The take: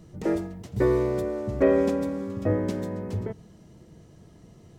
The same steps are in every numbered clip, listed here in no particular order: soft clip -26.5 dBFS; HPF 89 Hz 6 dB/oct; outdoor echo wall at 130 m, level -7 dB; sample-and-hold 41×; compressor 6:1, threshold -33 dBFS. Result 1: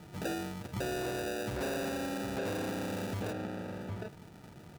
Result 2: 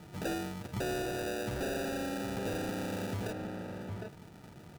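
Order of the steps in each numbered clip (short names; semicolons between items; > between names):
sample-and-hold > outdoor echo > soft clip > HPF > compressor; sample-and-hold > HPF > soft clip > outdoor echo > compressor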